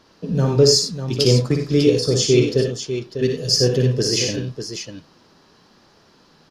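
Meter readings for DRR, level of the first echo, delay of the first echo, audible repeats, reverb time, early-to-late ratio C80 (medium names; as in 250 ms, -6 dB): no reverb, -6.0 dB, 57 ms, 3, no reverb, no reverb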